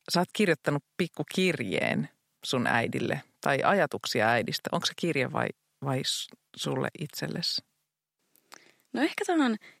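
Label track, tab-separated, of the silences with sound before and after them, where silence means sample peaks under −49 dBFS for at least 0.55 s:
7.600000	8.360000	silence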